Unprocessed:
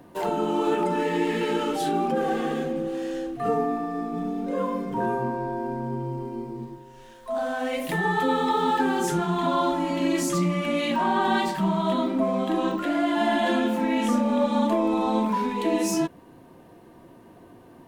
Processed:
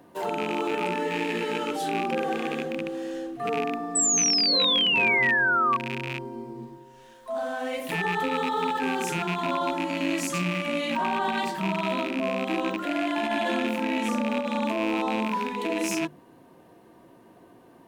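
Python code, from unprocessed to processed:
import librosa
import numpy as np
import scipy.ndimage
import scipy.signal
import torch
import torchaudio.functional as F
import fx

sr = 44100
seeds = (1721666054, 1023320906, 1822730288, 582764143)

y = fx.rattle_buzz(x, sr, strikes_db=-30.0, level_db=-18.0)
y = fx.low_shelf(y, sr, hz=83.0, db=-10.5)
y = fx.hum_notches(y, sr, base_hz=50, count=7)
y = fx.over_compress(y, sr, threshold_db=-23.0, ratio=-0.5)
y = fx.spec_paint(y, sr, seeds[0], shape='fall', start_s=3.95, length_s=1.82, low_hz=1100.0, high_hz=8100.0, level_db=-20.0)
y = F.gain(torch.from_numpy(y), -2.5).numpy()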